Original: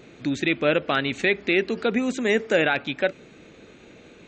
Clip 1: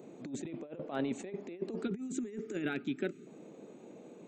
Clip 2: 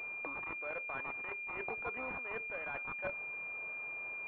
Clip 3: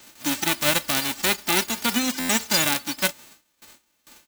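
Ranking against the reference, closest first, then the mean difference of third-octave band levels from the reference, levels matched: 1, 2, 3; 7.0 dB, 9.0 dB, 13.5 dB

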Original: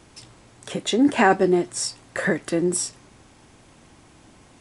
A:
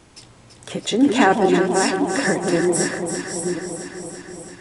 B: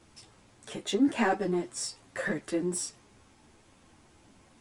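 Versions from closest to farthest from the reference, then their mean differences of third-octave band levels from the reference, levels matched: B, A; 1.5 dB, 8.5 dB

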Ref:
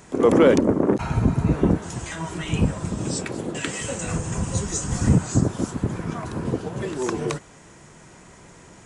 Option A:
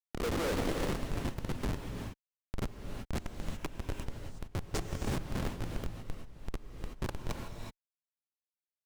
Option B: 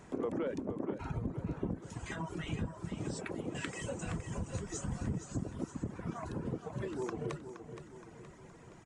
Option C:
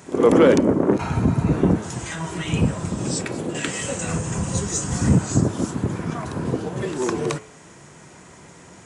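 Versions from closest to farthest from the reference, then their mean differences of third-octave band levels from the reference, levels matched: C, B, A; 1.0 dB, 4.5 dB, 11.0 dB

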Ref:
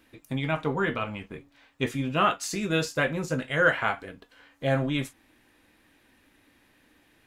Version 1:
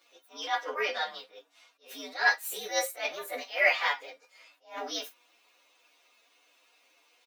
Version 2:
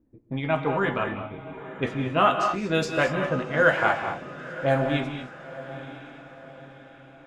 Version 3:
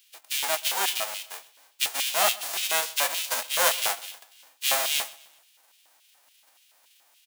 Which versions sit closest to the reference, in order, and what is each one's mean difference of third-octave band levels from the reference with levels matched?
2, 1, 3; 7.0 dB, 12.5 dB, 18.5 dB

